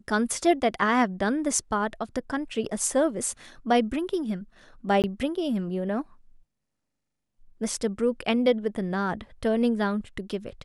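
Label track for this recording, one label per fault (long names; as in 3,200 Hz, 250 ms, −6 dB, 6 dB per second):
5.020000	5.040000	drop-out 18 ms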